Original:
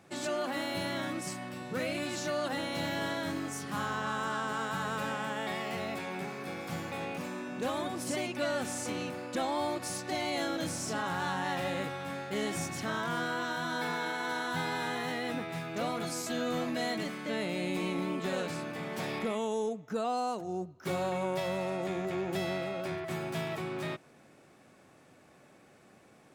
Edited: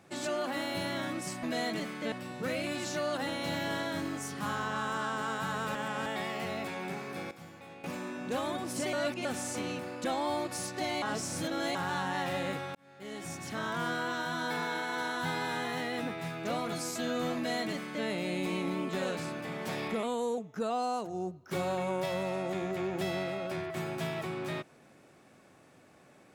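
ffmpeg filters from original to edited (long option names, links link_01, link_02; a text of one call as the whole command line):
ffmpeg -i in.wav -filter_complex "[0:a]asplit=14[link_01][link_02][link_03][link_04][link_05][link_06][link_07][link_08][link_09][link_10][link_11][link_12][link_13][link_14];[link_01]atrim=end=1.432[link_15];[link_02]atrim=start=16.668:end=17.362[link_16];[link_03]atrim=start=1.428:end=5.062[link_17];[link_04]atrim=start=5.058:end=5.372,asetpts=PTS-STARTPTS,areverse[link_18];[link_05]atrim=start=5.368:end=6.622[link_19];[link_06]atrim=start=6.618:end=7.152,asetpts=PTS-STARTPTS,volume=-12dB[link_20];[link_07]atrim=start=7.148:end=8.242[link_21];[link_08]atrim=start=8.238:end=8.562,asetpts=PTS-STARTPTS,areverse[link_22];[link_09]atrim=start=8.558:end=10.332[link_23];[link_10]atrim=start=10.328:end=11.062,asetpts=PTS-STARTPTS,areverse[link_24];[link_11]atrim=start=11.058:end=12.06,asetpts=PTS-STARTPTS,afade=type=out:start_time=0.998:duration=0.004:curve=hsin[link_25];[link_12]atrim=start=12.06:end=19.344,asetpts=PTS-STARTPTS,afade=type=in:duration=1.04[link_26];[link_13]atrim=start=19.34:end=19.72,asetpts=PTS-STARTPTS,asetrate=48069,aresample=44100,atrim=end_sample=15374,asetpts=PTS-STARTPTS[link_27];[link_14]atrim=start=19.716[link_28];[link_15][link_16]acrossfade=duration=0.004:curve1=hsin:curve2=hsin[link_29];[link_29][link_17]acrossfade=duration=0.004:curve1=hsin:curve2=hsin[link_30];[link_30][link_18]acrossfade=duration=0.004:curve1=hsin:curve2=hsin[link_31];[link_31][link_19]acrossfade=duration=0.004:curve1=hsin:curve2=hsin[link_32];[link_32][link_20]acrossfade=duration=0.004:curve1=hsin:curve2=hsin[link_33];[link_33][link_21]acrossfade=duration=0.004:curve1=hsin:curve2=hsin[link_34];[link_34][link_22]acrossfade=duration=0.004:curve1=hsin:curve2=hsin[link_35];[link_35][link_23]acrossfade=duration=0.004:curve1=hsin:curve2=hsin[link_36];[link_36][link_24]acrossfade=duration=0.004:curve1=hsin:curve2=hsin[link_37];[link_25][link_26]concat=n=2:v=0:a=1[link_38];[link_37][link_38]acrossfade=duration=0.004:curve1=hsin:curve2=hsin[link_39];[link_39][link_27]acrossfade=duration=0.004:curve1=hsin:curve2=hsin[link_40];[link_40][link_28]acrossfade=duration=0.004:curve1=hsin:curve2=hsin" out.wav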